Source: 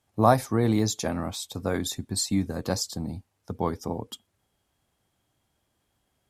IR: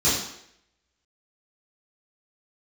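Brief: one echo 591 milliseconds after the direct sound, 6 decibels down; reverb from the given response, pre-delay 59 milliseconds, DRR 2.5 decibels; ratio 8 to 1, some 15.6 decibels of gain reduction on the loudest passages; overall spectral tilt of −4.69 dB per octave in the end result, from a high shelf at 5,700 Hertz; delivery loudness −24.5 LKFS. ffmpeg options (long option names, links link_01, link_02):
-filter_complex "[0:a]highshelf=frequency=5700:gain=3.5,acompressor=threshold=-29dB:ratio=8,aecho=1:1:591:0.501,asplit=2[link_01][link_02];[1:a]atrim=start_sample=2205,adelay=59[link_03];[link_02][link_03]afir=irnorm=-1:irlink=0,volume=-18dB[link_04];[link_01][link_04]amix=inputs=2:normalize=0,volume=6dB"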